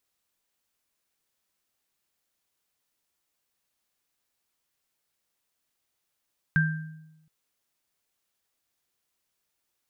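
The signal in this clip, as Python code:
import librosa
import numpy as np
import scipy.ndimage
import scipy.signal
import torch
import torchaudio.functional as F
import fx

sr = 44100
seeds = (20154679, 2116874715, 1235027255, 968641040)

y = fx.additive_free(sr, length_s=0.72, hz=157.0, level_db=-19.0, upper_db=(-1,), decay_s=1.0, upper_decays_s=(0.59,), upper_hz=(1580.0,))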